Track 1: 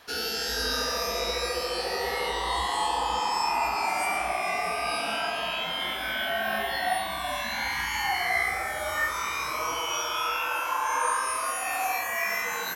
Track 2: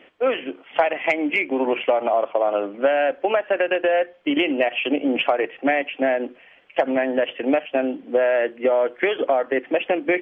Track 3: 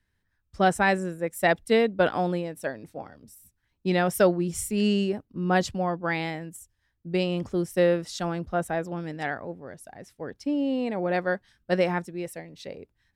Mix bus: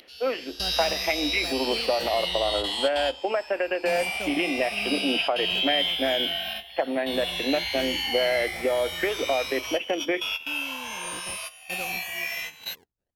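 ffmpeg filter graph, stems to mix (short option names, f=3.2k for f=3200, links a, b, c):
-filter_complex "[0:a]firequalizer=gain_entry='entry(100,0);entry(320,-20);entry(640,-6);entry(1200,-16);entry(2900,10);entry(6700,-4);entry(9500,-1)':delay=0.05:min_phase=1,acompressor=mode=upward:threshold=-44dB:ratio=2.5,volume=-1dB[a];[1:a]volume=-6dB[b];[2:a]acrusher=samples=24:mix=1:aa=0.000001:lfo=1:lforange=38.4:lforate=1.1,volume=-17dB,asplit=2[c][d];[d]apad=whole_len=566846[e];[a][e]sidechaingate=range=-15dB:threshold=-59dB:ratio=16:detection=peak[f];[f][b][c]amix=inputs=3:normalize=0"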